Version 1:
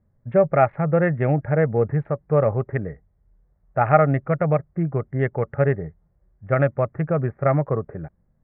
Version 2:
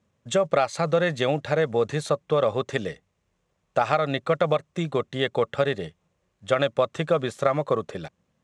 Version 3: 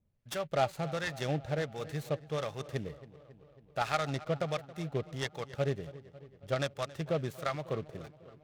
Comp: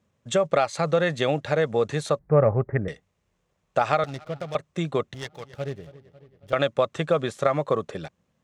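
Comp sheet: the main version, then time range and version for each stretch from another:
2
2.19–2.88 from 1
4.04–4.55 from 3
5.14–6.53 from 3

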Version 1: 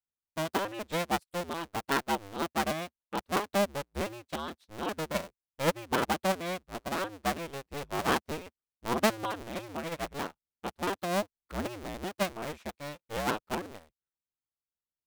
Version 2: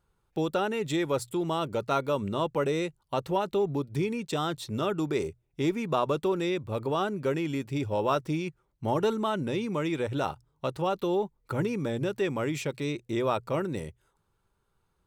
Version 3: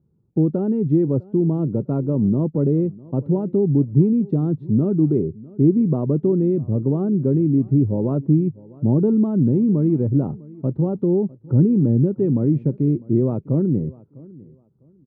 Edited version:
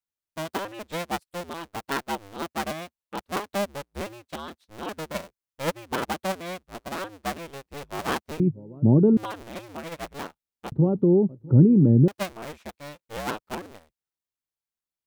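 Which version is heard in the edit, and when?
1
8.4–9.17 from 3
10.72–12.08 from 3
not used: 2

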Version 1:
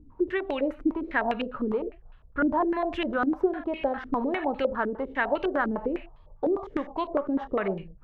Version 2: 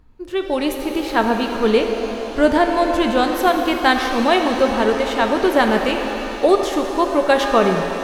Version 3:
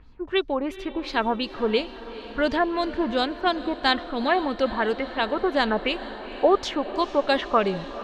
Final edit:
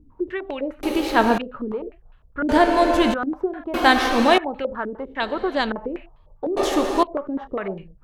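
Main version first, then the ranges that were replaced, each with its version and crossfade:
1
0.83–1.38 from 2
2.49–3.14 from 2
3.74–4.38 from 2
5.2–5.72 from 3
6.57–7.03 from 2

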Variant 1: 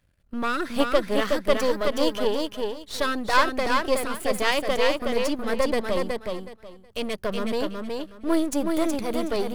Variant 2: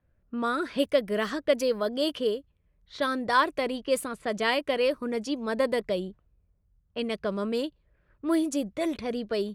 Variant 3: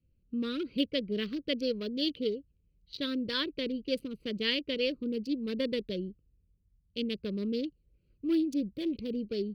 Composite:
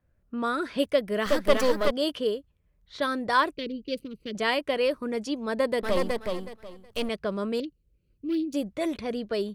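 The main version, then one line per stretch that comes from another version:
2
1.26–1.91 from 1
3.53–4.35 from 3
5.83–7.09 from 1
7.6–8.54 from 3

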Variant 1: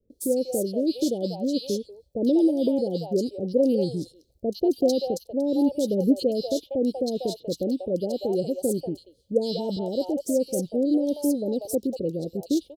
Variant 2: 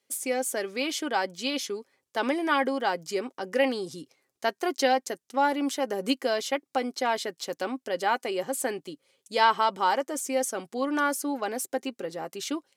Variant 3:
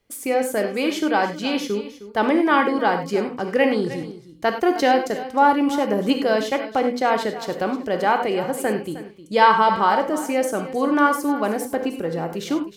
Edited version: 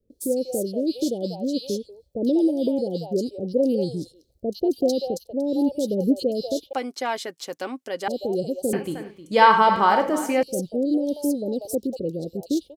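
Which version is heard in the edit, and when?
1
6.73–8.08 from 2
8.73–10.43 from 3

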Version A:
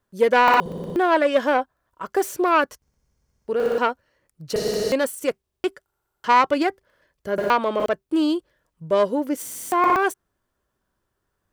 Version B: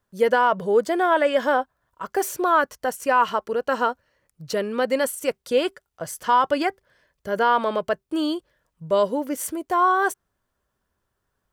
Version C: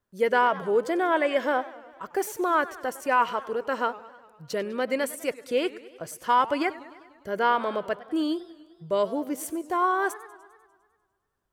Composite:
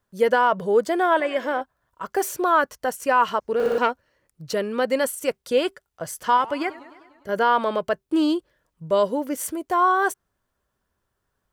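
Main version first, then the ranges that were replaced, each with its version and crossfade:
B
1.2–1.61 from C
3.4–4.46 from A
6.37–7.29 from C
8.03–8.9 from A

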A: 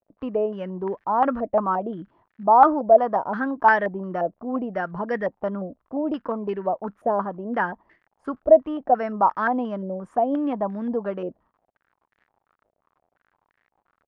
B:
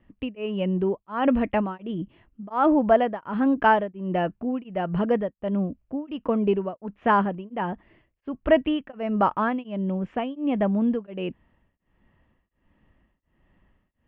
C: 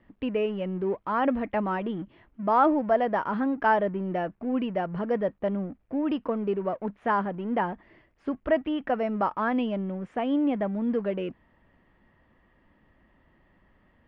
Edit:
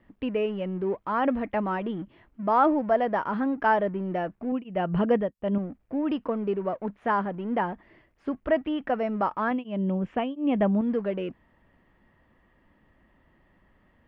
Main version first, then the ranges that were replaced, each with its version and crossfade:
C
4.52–5.58 from B
9.51–10.81 from B
not used: A

